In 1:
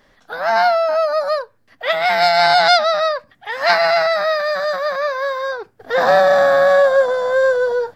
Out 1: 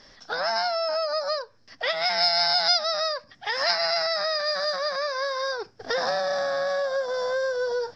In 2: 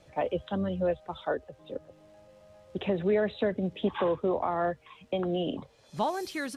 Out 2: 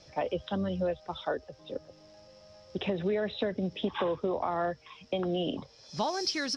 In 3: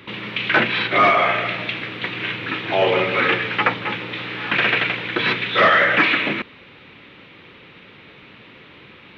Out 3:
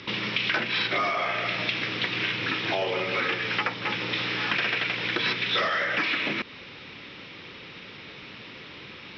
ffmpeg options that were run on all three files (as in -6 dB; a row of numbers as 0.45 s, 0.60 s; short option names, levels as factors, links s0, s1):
-af "acompressor=threshold=0.0501:ratio=5,lowpass=f=5300:t=q:w=11"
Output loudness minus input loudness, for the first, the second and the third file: -9.0 LU, -2.5 LU, -7.0 LU